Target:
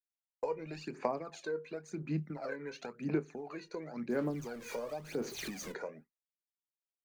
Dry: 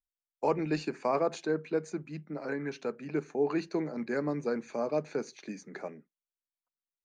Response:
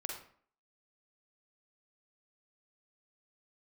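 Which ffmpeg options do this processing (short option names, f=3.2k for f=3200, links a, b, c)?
-filter_complex "[0:a]asettb=1/sr,asplit=3[a][b][c];[a]atrim=end=4.104[d];[b]atrim=start=4.1:end=5.72,asetpts=PTS-STARTPTS,afade=t=in:d=0.004:c=qsin,afade=t=out:st=1.616:d=0.004:c=qsin,aeval=exprs='val(0)+0.5*0.00944*sgn(val(0))':c=same[e];[c]atrim=start=5.716[f];[d][e]acrossfade=d=0.004:c1=hsin:c2=qsin[g];[g][f]acrossfade=d=0.004:c1=qsin:c2=hsin,agate=range=-33dB:threshold=-47dB:ratio=3:detection=peak,acompressor=threshold=-42dB:ratio=6,asplit=2[h][i];[i]adelay=25,volume=-12dB[j];[h][j]amix=inputs=2:normalize=0,aphaser=in_gain=1:out_gain=1:delay=2.1:decay=0.66:speed=0.95:type=sinusoidal,volume=2.5dB"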